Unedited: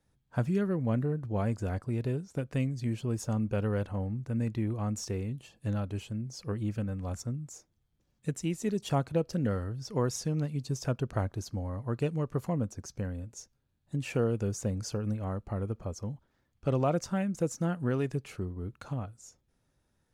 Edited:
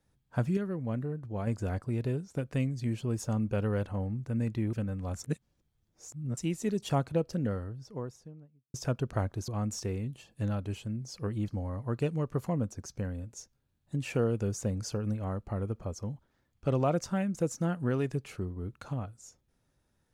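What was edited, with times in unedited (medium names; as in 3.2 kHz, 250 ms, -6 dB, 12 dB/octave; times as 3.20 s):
0.57–1.47 s: gain -4.5 dB
4.73–6.73 s: move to 11.48 s
7.24–8.37 s: reverse
8.98–10.74 s: studio fade out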